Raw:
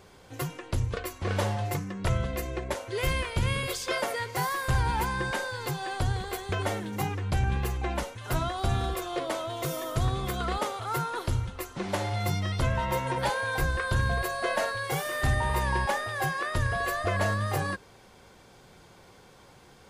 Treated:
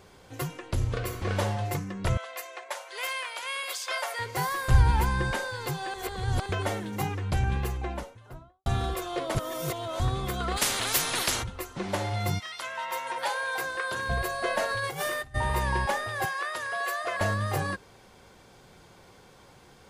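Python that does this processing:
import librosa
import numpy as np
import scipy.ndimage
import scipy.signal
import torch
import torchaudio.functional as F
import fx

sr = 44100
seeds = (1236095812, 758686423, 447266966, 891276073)

y = fx.reverb_throw(x, sr, start_s=0.73, length_s=0.47, rt60_s=1.3, drr_db=4.0)
y = fx.highpass(y, sr, hz=660.0, slope=24, at=(2.17, 4.19))
y = fx.low_shelf(y, sr, hz=110.0, db=11.5, at=(4.71, 5.35))
y = fx.studio_fade_out(y, sr, start_s=7.51, length_s=1.15)
y = fx.spectral_comp(y, sr, ratio=10.0, at=(10.56, 11.42), fade=0.02)
y = fx.highpass(y, sr, hz=fx.line((12.38, 1300.0), (14.08, 330.0)), slope=12, at=(12.38, 14.08), fade=0.02)
y = fx.over_compress(y, sr, threshold_db=-33.0, ratio=-0.5, at=(14.67, 15.34), fade=0.02)
y = fx.highpass(y, sr, hz=600.0, slope=12, at=(16.25, 17.21))
y = fx.edit(y, sr, fx.reverse_span(start_s=5.94, length_s=0.52),
    fx.reverse_span(start_s=9.35, length_s=0.65), tone=tone)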